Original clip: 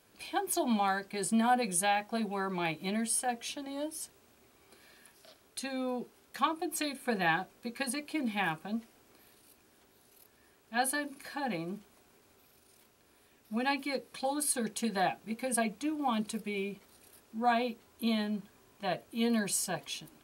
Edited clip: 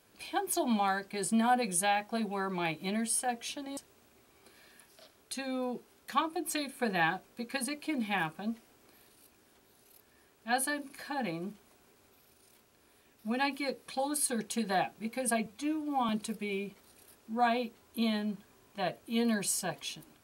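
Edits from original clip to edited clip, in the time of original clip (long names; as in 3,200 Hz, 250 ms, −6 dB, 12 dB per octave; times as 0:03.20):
0:03.77–0:04.03: remove
0:15.72–0:16.14: time-stretch 1.5×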